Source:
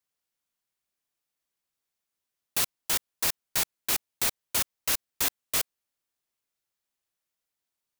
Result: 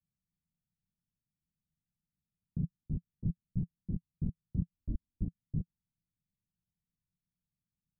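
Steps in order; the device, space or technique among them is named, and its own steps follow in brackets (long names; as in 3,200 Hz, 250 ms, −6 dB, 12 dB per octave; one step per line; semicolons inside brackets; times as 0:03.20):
0:04.73–0:05.23: comb filter 3.2 ms, depth 83%
the neighbour's flat through the wall (low-pass filter 190 Hz 24 dB per octave; parametric band 170 Hz +7 dB 0.53 octaves)
level +11.5 dB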